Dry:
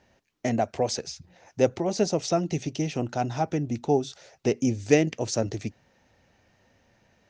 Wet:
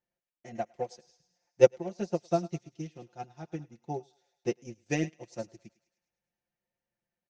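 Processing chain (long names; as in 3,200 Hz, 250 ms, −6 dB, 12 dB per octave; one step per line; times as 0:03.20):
high-shelf EQ 6,200 Hz −2.5 dB
comb filter 5.7 ms, depth 81%
on a send: feedback echo with a high-pass in the loop 105 ms, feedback 62%, high-pass 570 Hz, level −9.5 dB
on the sum: expander for the loud parts 2.5 to 1, over −32 dBFS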